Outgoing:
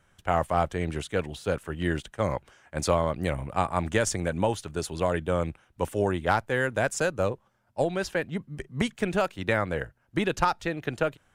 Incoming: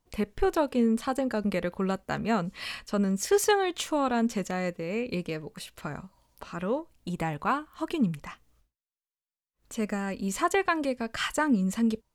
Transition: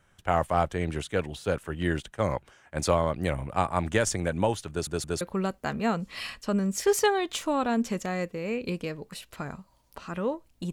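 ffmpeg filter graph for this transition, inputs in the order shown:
-filter_complex "[0:a]apad=whole_dur=10.72,atrim=end=10.72,asplit=3[a][b][c];[a]atrim=end=4.872[d];[b]atrim=start=4.698:end=4.872[e];[c]atrim=start=4.698:end=4.872[f];[1:a]atrim=start=1.658:end=7.17[g];[d][e]acrossfade=d=0.004:c1=hsin:c2=hsin[h];[h][f]acrossfade=d=0.004:c1=hsin:c2=hsin[i];[i][g]acrossfade=d=0.004:c1=hsin:c2=hsin"

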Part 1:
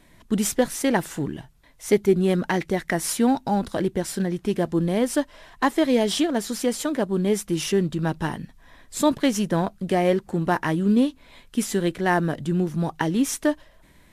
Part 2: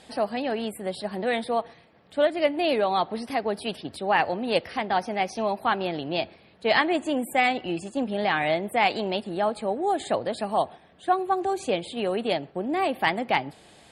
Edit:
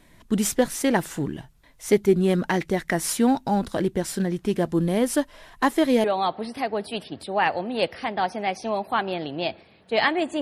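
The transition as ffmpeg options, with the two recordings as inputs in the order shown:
-filter_complex "[0:a]asettb=1/sr,asplit=3[a][b][c];[a]atrim=end=4.694[d];[b]atrim=start=4.69:end=6.04,asetpts=PTS-STARTPTS,afade=t=in:d=0.004:c=qsin,afade=t=out:st=1.346:d=0.004:c=qsin,equalizer=f=11k:t=o:w=0.25:g=6.5[e];[c]atrim=start=6.036[f];[d][e]acrossfade=d=0.004:c1=hsin:c2=qsin[g];[g][f]acrossfade=d=0.004:c1=qsin:c2=hsin,apad=whole_dur=10.41,atrim=end=10.41,atrim=end=6.042[h];[1:a]atrim=start=2.768:end=7.14[i];[h][i]acrossfade=d=0.004:c1=hsin:c2=hsin"

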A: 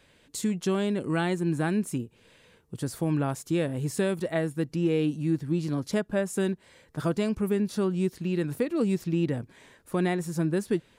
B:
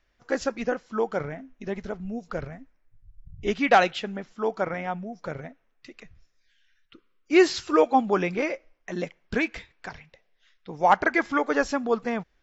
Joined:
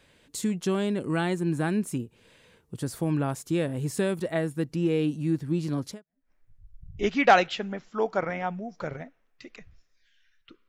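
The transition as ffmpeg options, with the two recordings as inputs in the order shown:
-filter_complex "[0:a]apad=whole_dur=10.68,atrim=end=10.68,atrim=end=6.31,asetpts=PTS-STARTPTS[a];[1:a]atrim=start=2.33:end=7.12,asetpts=PTS-STARTPTS[b];[a][b]acrossfade=d=0.42:c1=exp:c2=exp"

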